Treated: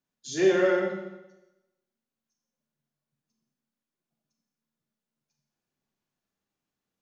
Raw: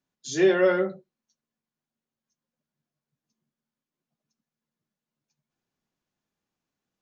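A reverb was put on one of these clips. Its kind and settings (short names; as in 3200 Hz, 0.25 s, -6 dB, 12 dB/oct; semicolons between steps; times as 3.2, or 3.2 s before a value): Schroeder reverb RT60 0.97 s, combs from 28 ms, DRR 2 dB; gain -3.5 dB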